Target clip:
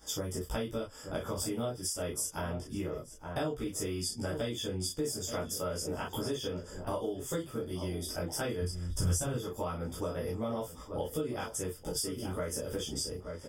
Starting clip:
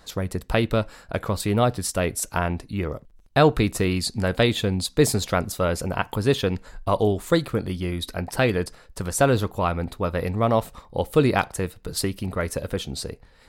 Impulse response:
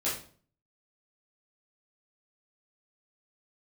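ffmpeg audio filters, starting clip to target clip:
-filter_complex "[0:a]asuperstop=centerf=4100:order=8:qfactor=3.1,highshelf=f=3.2k:t=q:w=3:g=7.5,asplit=2[a][b];[b]adelay=874.6,volume=-14dB,highshelf=f=4k:g=-19.7[c];[a][c]amix=inputs=2:normalize=0[d];[1:a]atrim=start_sample=2205,atrim=end_sample=3087[e];[d][e]afir=irnorm=-1:irlink=0,acompressor=threshold=-25dB:ratio=6,asplit=3[f][g][h];[f]afade=t=out:st=8.61:d=0.02[i];[g]asubboost=boost=5:cutoff=150,afade=t=in:st=8.61:d=0.02,afade=t=out:st=9.35:d=0.02[j];[h]afade=t=in:st=9.35:d=0.02[k];[i][j][k]amix=inputs=3:normalize=0,volume=-8dB"

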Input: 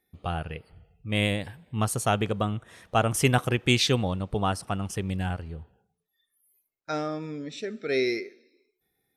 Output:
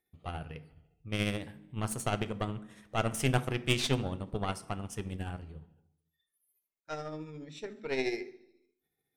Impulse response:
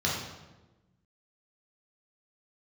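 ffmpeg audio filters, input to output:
-filter_complex "[0:a]tremolo=f=14:d=0.45,aeval=exprs='0.531*(cos(1*acos(clip(val(0)/0.531,-1,1)))-cos(1*PI/2))+0.0473*(cos(3*acos(clip(val(0)/0.531,-1,1)))-cos(3*PI/2))+0.0376*(cos(8*acos(clip(val(0)/0.531,-1,1)))-cos(8*PI/2))':c=same,asplit=2[a][b];[1:a]atrim=start_sample=2205,asetrate=74970,aresample=44100[c];[b][c]afir=irnorm=-1:irlink=0,volume=-17dB[d];[a][d]amix=inputs=2:normalize=0,volume=-4.5dB"

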